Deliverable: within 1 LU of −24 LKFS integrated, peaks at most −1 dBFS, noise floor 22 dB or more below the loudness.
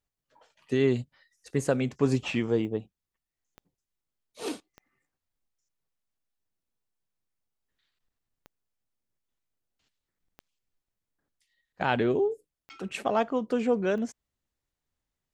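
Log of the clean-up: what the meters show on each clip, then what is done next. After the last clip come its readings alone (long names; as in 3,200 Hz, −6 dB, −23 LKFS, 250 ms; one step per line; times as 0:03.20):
number of clicks 7; integrated loudness −28.5 LKFS; sample peak −10.0 dBFS; target loudness −24.0 LKFS
→ click removal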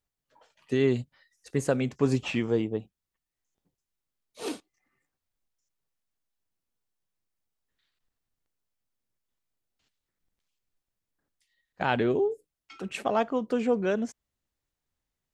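number of clicks 0; integrated loudness −28.5 LKFS; sample peak −10.0 dBFS; target loudness −24.0 LKFS
→ level +4.5 dB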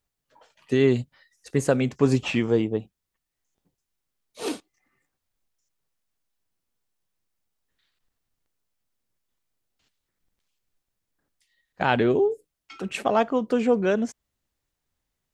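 integrated loudness −24.0 LKFS; sample peak −5.5 dBFS; background noise floor −83 dBFS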